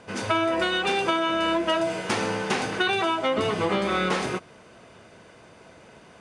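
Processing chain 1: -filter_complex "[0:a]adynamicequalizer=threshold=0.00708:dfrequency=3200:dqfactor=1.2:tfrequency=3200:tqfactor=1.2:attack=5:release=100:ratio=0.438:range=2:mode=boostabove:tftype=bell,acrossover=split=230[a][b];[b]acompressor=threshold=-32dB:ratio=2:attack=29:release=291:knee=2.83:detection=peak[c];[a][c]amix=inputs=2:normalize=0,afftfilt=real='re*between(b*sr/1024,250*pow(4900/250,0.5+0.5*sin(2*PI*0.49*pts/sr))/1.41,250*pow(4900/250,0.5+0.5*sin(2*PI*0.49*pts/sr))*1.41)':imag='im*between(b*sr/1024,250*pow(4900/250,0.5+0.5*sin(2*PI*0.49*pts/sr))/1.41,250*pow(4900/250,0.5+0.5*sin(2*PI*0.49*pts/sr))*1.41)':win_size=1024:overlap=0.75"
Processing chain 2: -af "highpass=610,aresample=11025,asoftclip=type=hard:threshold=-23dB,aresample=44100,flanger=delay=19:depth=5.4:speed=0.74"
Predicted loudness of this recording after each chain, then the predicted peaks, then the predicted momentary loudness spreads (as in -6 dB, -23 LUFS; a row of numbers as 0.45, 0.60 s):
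-35.5, -30.5 LUFS; -21.0, -21.0 dBFS; 6, 4 LU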